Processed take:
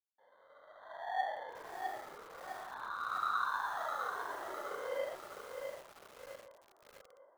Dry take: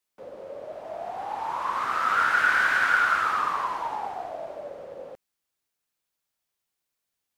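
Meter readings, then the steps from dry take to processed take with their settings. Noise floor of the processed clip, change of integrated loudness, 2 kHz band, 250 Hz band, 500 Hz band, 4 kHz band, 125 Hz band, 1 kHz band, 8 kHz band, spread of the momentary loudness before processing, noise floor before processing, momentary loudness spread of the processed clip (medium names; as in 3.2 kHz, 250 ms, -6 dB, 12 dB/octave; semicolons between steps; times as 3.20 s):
-67 dBFS, -15.5 dB, -19.0 dB, -12.0 dB, -6.0 dB, -12.5 dB, no reading, -12.0 dB, -10.5 dB, 19 LU, -83 dBFS, 19 LU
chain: fade-in on the opening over 1.43 s; peaking EQ 390 Hz -3 dB 0.35 oct; hum notches 60/120/180/240/300/360 Hz; compression 6:1, threshold -32 dBFS, peak gain reduction 14 dB; wah-wah 0.39 Hz 370–1200 Hz, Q 7.8; sample-and-hold 17×; distance through air 480 m; filtered feedback delay 736 ms, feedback 70%, low-pass 2 kHz, level -17 dB; bit-crushed delay 656 ms, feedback 55%, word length 10-bit, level -4.5 dB; trim +8.5 dB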